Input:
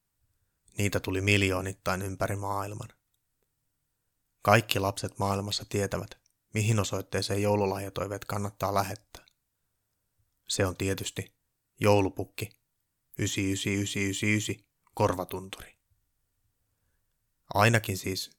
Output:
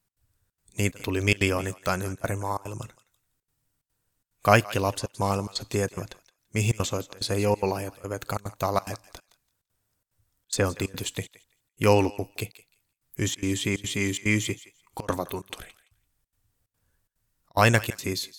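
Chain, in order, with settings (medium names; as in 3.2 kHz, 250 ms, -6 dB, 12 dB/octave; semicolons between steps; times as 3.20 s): trance gate "x.xxxx.xxx" 181 bpm -24 dB; thinning echo 169 ms, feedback 18%, high-pass 1.1 kHz, level -16 dB; trim +3 dB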